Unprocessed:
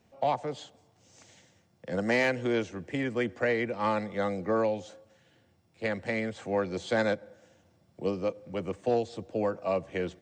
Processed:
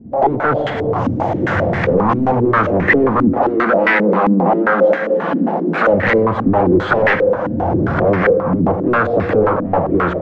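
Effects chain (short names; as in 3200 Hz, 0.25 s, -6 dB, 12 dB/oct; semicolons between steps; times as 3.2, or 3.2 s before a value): recorder AGC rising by 48 dB/s; sine folder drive 18 dB, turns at -10.5 dBFS; sample leveller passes 2; 3.37–5.87 steep high-pass 160 Hz 96 dB/oct; thinning echo 0.11 s, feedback 85%, level -20.5 dB; on a send at -8.5 dB: reverb RT60 2.1 s, pre-delay 3 ms; on the sum: stepped low-pass 7.5 Hz 260–1900 Hz; gain -5.5 dB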